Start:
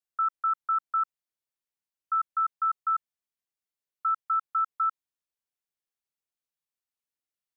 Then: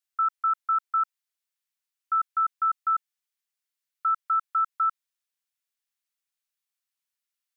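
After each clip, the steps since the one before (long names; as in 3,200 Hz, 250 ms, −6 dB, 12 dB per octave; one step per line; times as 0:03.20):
high-pass filter 1,300 Hz 12 dB per octave
level +5 dB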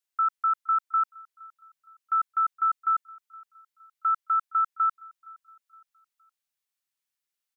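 repeating echo 466 ms, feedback 41%, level −24 dB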